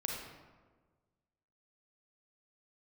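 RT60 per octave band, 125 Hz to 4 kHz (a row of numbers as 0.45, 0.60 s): 1.8, 1.6, 1.5, 1.3, 1.1, 0.75 s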